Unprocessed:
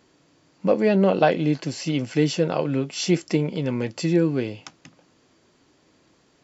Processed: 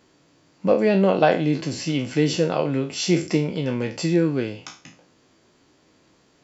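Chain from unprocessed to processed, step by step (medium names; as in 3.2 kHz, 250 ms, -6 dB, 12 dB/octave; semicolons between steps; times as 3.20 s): spectral sustain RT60 0.36 s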